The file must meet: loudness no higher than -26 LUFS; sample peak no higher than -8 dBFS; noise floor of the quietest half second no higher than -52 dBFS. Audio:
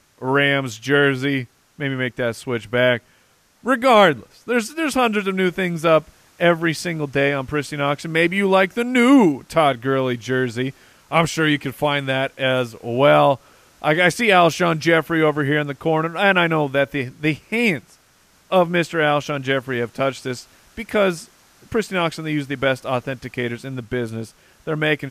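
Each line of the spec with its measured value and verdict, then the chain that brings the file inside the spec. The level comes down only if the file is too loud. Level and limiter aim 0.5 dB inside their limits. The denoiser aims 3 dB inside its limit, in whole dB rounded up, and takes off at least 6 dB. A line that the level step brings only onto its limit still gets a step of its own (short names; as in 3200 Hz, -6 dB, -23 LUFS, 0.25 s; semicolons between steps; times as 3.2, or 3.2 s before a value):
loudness -19.5 LUFS: fail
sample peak -2.5 dBFS: fail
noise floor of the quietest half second -58 dBFS: OK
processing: gain -7 dB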